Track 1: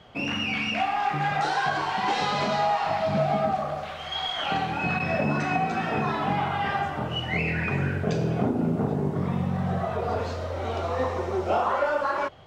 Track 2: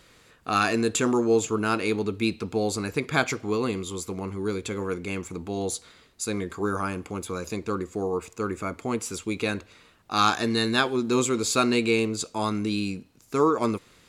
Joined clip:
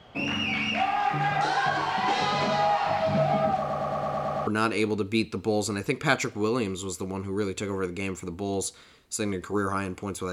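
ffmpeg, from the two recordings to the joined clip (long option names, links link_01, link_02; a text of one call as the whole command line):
ffmpeg -i cue0.wav -i cue1.wav -filter_complex "[0:a]apad=whole_dur=10.32,atrim=end=10.32,asplit=8[link_01][link_02][link_03][link_04][link_05][link_06][link_07][link_08];[link_01]atrim=end=3.702[link_09];[link_02]atrim=start=3.588:end=3.702[link_10];[link_03]atrim=start=3.588:end=3.702[link_11];[link_04]atrim=start=3.588:end=3.702[link_12];[link_05]atrim=start=3.588:end=3.702[link_13];[link_06]atrim=start=3.588:end=3.702[link_14];[link_07]atrim=start=3.588:end=3.702[link_15];[link_08]atrim=start=3.588:end=3.702[link_16];[1:a]atrim=start=1.548:end=7.4[link_17];[link_09][link_10]acrossfade=duration=0.004:curve1=hsin:curve2=hsin[link_18];[link_18][link_11]acrossfade=duration=0.004:curve1=hsin:curve2=hsin[link_19];[link_19][link_12]acrossfade=duration=0.004:curve1=hsin:curve2=hsin[link_20];[link_20][link_13]acrossfade=duration=0.004:curve1=hsin:curve2=hsin[link_21];[link_21][link_14]acrossfade=duration=0.004:curve1=hsin:curve2=hsin[link_22];[link_22][link_15]acrossfade=duration=0.004:curve1=hsin:curve2=hsin[link_23];[link_23][link_16]acrossfade=duration=0.004:curve1=hsin:curve2=hsin[link_24];[link_24][link_17]acrossfade=duration=0.004:curve1=hsin:curve2=hsin" out.wav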